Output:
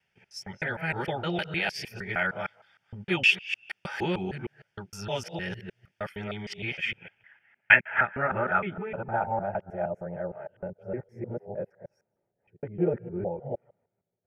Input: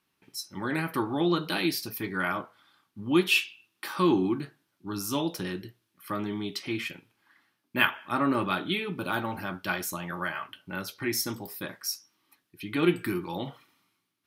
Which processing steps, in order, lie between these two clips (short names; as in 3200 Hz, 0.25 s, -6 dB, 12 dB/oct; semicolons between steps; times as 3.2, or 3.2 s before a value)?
local time reversal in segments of 0.154 s; low-pass sweep 4300 Hz -> 530 Hz, 6.54–10.12; fixed phaser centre 1100 Hz, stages 6; gain +3.5 dB